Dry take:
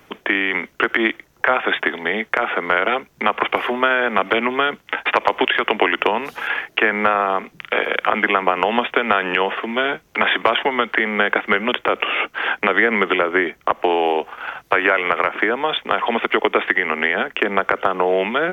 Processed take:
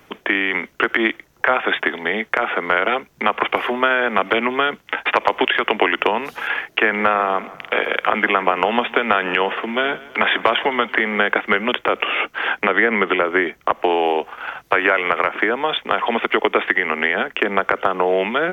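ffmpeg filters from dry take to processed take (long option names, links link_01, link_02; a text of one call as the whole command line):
ffmpeg -i in.wav -filter_complex "[0:a]asettb=1/sr,asplit=3[link_01][link_02][link_03];[link_01]atrim=end=6.684[link_04];[link_02]atrim=start=6.68:end=11.18,asetpts=PTS-STARTPTS,afade=type=in:duration=0.004:curve=qsin,afade=type=out:start_time=4.496:duration=0.004:curve=qsin,aecho=1:1:166|332|498|664:0.112|0.055|0.0269|0.0132,atrim=end_sample=198450[link_05];[link_03]atrim=start=11.176[link_06];[link_04][link_05]acrossfade=duration=0.004:curve1=hsin:curve2=qsin[link_07];[link_07][link_06]acrossfade=duration=0.004:curve1=qsin:curve2=hsin,asettb=1/sr,asplit=3[link_08][link_09][link_10];[link_08]atrim=end=12.664[link_11];[link_09]atrim=start=12.66:end=13.25,asetpts=PTS-STARTPTS,afade=type=in:duration=0.004:curve=qsin,afade=type=out:start_time=0.586:duration=0.004:curve=qsin,acrossover=split=4000[link_12][link_13];[link_13]acompressor=threshold=-50dB:ratio=4:attack=1:release=60[link_14];[link_12][link_14]amix=inputs=2:normalize=0[link_15];[link_10]atrim=start=13.246[link_16];[link_11][link_15]acrossfade=duration=0.004:curve1=hsin:curve2=qsin[link_17];[link_17][link_16]acrossfade=duration=0.004:curve1=qsin:curve2=hsin" out.wav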